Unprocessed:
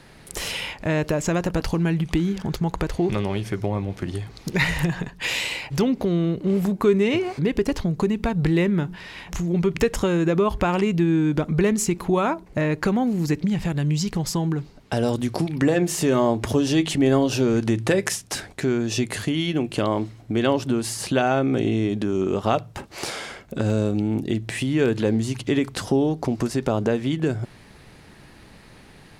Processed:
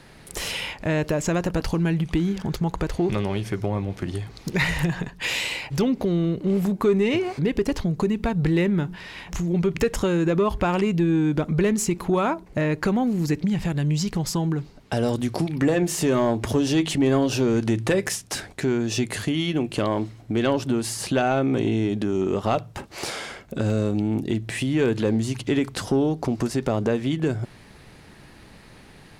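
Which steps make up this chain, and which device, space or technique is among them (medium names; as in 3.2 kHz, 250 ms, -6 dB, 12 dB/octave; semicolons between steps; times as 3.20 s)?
saturation between pre-emphasis and de-emphasis (treble shelf 3.1 kHz +8 dB; saturation -10.5 dBFS, distortion -22 dB; treble shelf 3.1 kHz -8 dB)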